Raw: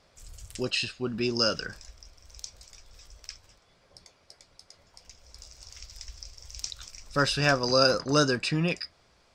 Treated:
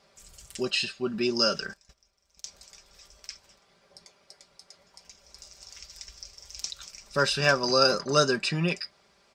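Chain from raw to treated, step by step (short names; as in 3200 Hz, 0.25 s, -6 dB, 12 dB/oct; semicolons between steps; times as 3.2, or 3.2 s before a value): 1.73–2.45 gate -44 dBFS, range -15 dB; HPF 150 Hz 6 dB/oct; comb 5.1 ms, depth 56%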